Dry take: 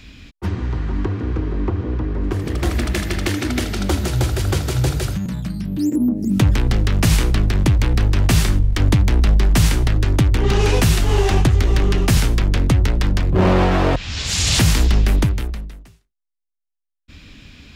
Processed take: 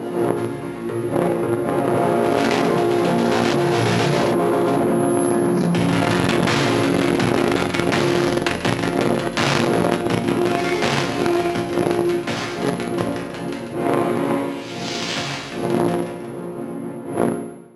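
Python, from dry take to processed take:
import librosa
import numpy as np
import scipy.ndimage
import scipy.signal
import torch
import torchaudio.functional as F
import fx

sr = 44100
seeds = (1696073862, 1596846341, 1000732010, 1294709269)

p1 = fx.dmg_wind(x, sr, seeds[0], corner_hz=330.0, level_db=-13.0)
p2 = fx.doppler_pass(p1, sr, speed_mps=51, closest_m=11.0, pass_at_s=4.62)
p3 = fx.high_shelf(p2, sr, hz=3000.0, db=11.5)
p4 = fx.resonator_bank(p3, sr, root=46, chord='minor', decay_s=0.54)
p5 = p4 + fx.echo_feedback(p4, sr, ms=140, feedback_pct=36, wet_db=-8, dry=0)
p6 = (np.kron(p5[::4], np.eye(4)[0]) * 4)[:len(p5)]
p7 = fx.fuzz(p6, sr, gain_db=37.0, gate_db=-41.0)
p8 = p6 + F.gain(torch.from_numpy(p7), -10.5).numpy()
p9 = scipy.signal.sosfilt(scipy.signal.butter(2, 240.0, 'highpass', fs=sr, output='sos'), p8)
p10 = fx.spacing_loss(p9, sr, db_at_10k=33)
p11 = fx.env_flatten(p10, sr, amount_pct=100)
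y = F.gain(torch.from_numpy(p11), 5.0).numpy()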